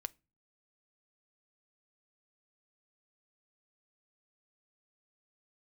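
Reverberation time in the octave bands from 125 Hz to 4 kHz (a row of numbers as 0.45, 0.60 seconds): 0.55, 0.50, 0.30, 0.25, 0.25, 0.25 seconds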